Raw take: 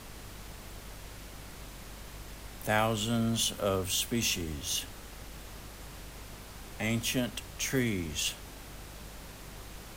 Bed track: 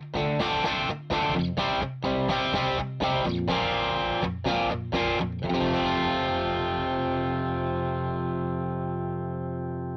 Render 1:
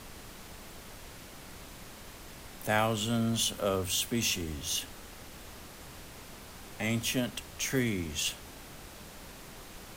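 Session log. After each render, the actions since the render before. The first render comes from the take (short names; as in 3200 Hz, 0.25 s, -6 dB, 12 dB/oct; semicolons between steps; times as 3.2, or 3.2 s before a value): de-hum 50 Hz, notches 3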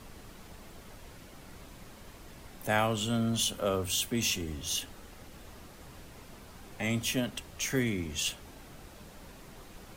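denoiser 6 dB, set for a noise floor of -49 dBFS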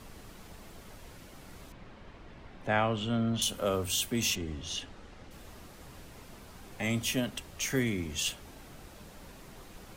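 1.72–3.42 LPF 3100 Hz; 4.35–5.31 air absorption 95 m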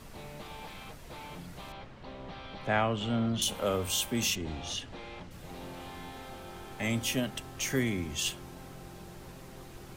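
add bed track -20 dB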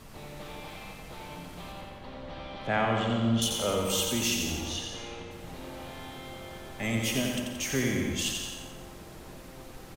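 feedback echo 88 ms, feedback 54%, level -4.5 dB; plate-style reverb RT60 0.88 s, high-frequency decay 0.65×, pre-delay 0.12 s, DRR 6.5 dB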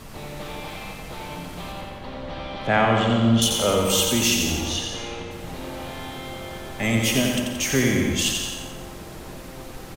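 gain +8 dB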